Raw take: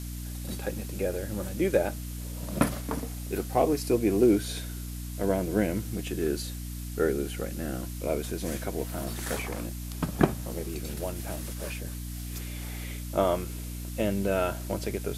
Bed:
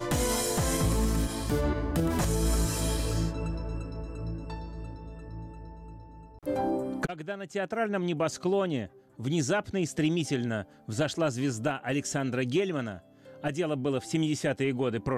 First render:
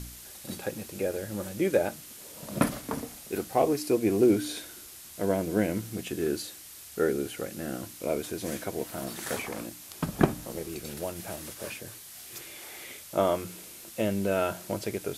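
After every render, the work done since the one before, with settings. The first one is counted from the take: de-hum 60 Hz, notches 5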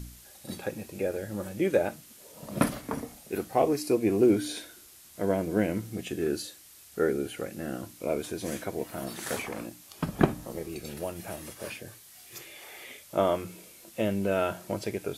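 noise print and reduce 6 dB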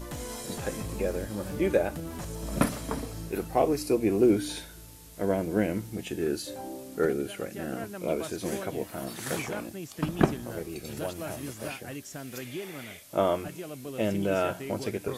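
add bed -10.5 dB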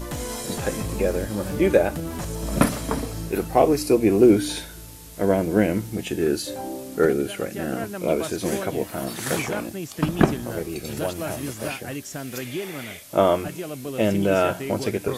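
gain +7 dB; limiter -1 dBFS, peak gain reduction 3 dB

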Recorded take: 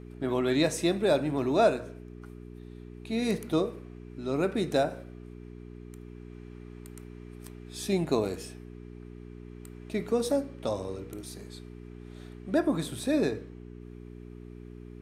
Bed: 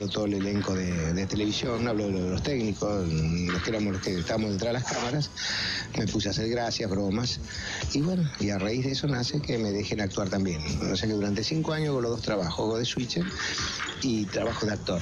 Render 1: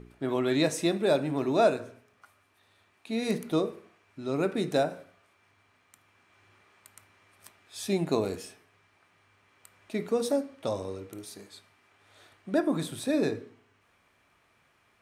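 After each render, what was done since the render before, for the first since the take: de-hum 60 Hz, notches 7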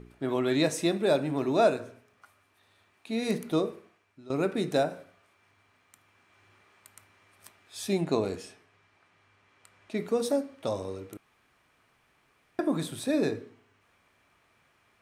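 3.72–4.3 fade out, to -15.5 dB; 8.01–9.97 Bessel low-pass 7700 Hz; 11.17–12.59 room tone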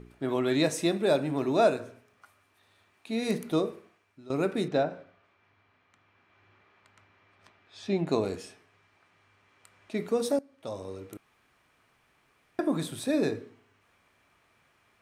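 4.68–8.07 air absorption 170 m; 10.39–11.14 fade in, from -18.5 dB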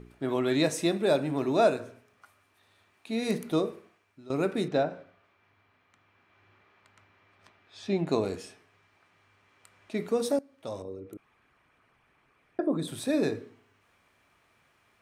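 10.82–12.88 formant sharpening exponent 1.5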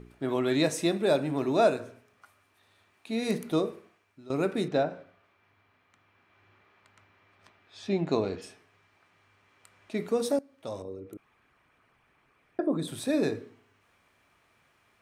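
7.89–8.41 LPF 9300 Hz -> 4400 Hz 24 dB/oct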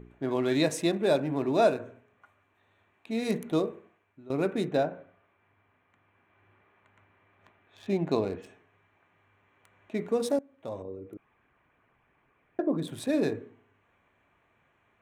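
Wiener smoothing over 9 samples; notch 1300 Hz, Q 14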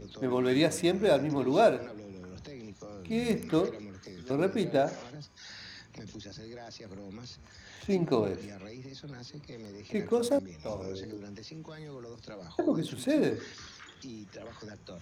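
add bed -17.5 dB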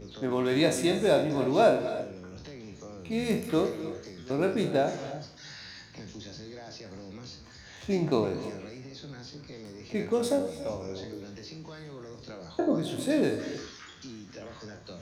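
spectral trails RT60 0.39 s; non-linear reverb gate 0.34 s rising, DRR 12 dB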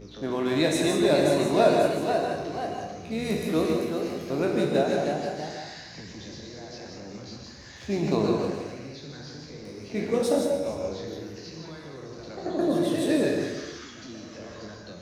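echoes that change speed 0.579 s, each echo +1 st, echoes 2, each echo -6 dB; non-linear reverb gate 0.2 s rising, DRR 2 dB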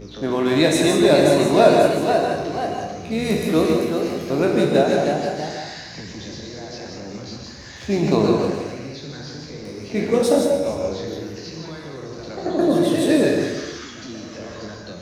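gain +7 dB; limiter -1 dBFS, peak gain reduction 0.5 dB

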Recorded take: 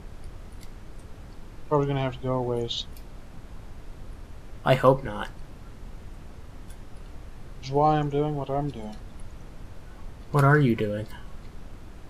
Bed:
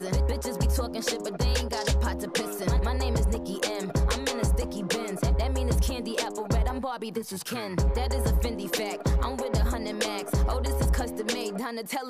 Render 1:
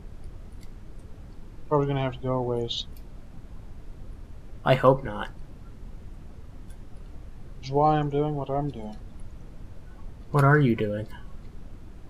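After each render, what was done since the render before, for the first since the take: denoiser 6 dB, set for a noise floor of -45 dBFS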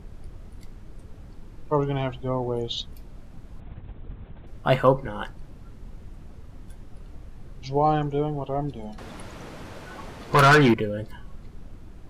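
3.6–4.47 LPC vocoder at 8 kHz whisper; 8.98–10.74 overdrive pedal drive 23 dB, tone 6000 Hz, clips at -8.5 dBFS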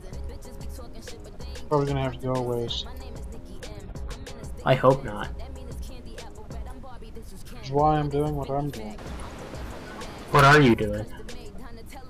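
add bed -13.5 dB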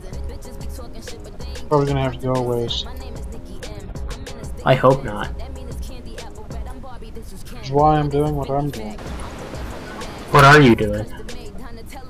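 gain +6.5 dB; limiter -2 dBFS, peak gain reduction 3 dB

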